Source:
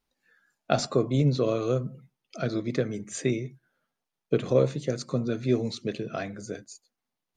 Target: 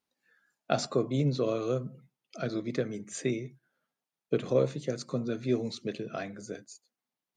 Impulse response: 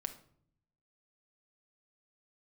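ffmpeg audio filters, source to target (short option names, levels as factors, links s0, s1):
-af "highpass=120,volume=0.668"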